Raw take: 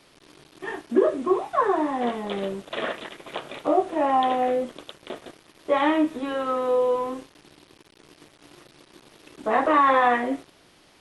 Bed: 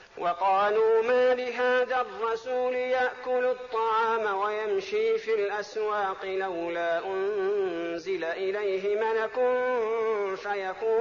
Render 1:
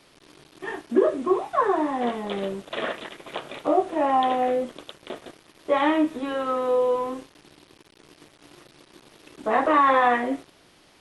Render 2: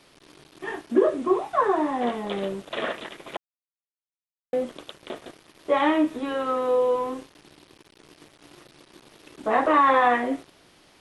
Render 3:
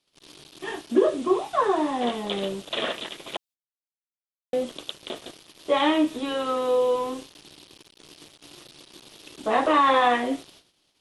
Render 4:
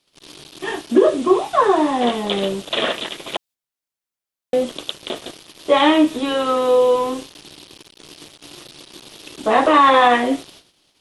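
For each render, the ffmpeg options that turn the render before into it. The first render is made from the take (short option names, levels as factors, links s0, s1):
-af anull
-filter_complex "[0:a]asplit=3[s0][s1][s2];[s0]atrim=end=3.37,asetpts=PTS-STARTPTS,afade=t=out:st=3.366:d=0.004:c=hsin[s3];[s1]atrim=start=3.37:end=4.53,asetpts=PTS-STARTPTS,volume=0[s4];[s2]atrim=start=4.53,asetpts=PTS-STARTPTS,afade=t=in:d=0.004:c=hsin[s5];[s3][s4][s5]concat=n=3:v=0:a=1"
-af "agate=range=0.0631:threshold=0.00224:ratio=16:detection=peak,highshelf=f=2500:t=q:w=1.5:g=6.5"
-af "volume=2.37,alimiter=limit=0.708:level=0:latency=1"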